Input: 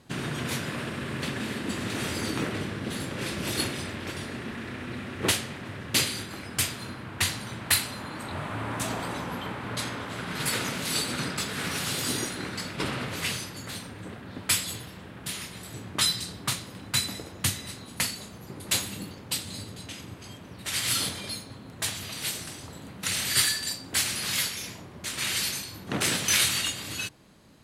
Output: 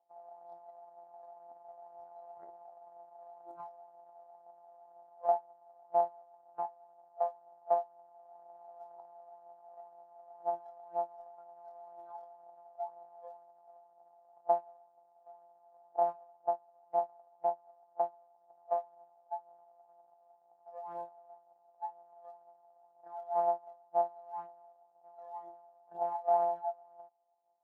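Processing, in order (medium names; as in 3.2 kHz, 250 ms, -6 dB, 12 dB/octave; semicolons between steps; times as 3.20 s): sorted samples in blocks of 256 samples; Butterworth band-pass 750 Hz, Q 4.5; tilt EQ -2 dB/octave; phaser 2 Hz, delay 1.9 ms, feedback 34%; spectral noise reduction 16 dB; trim +7 dB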